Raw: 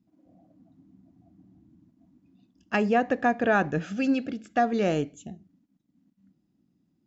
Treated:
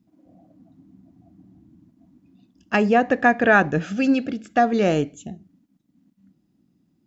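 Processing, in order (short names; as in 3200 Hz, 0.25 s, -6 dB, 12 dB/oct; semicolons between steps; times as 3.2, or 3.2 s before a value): 3.12–3.6 dynamic EQ 1900 Hz, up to +6 dB, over -39 dBFS, Q 1.7; gain +5.5 dB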